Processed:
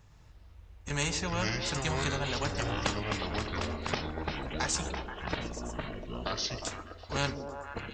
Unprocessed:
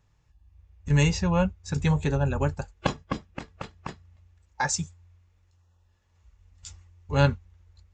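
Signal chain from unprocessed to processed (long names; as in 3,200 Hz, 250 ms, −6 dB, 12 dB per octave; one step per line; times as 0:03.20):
delay with pitch and tempo change per echo 118 ms, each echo −5 semitones, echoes 3
echo through a band-pass that steps 120 ms, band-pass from 280 Hz, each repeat 0.7 octaves, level −7 dB
every bin compressed towards the loudest bin 2 to 1
level −6 dB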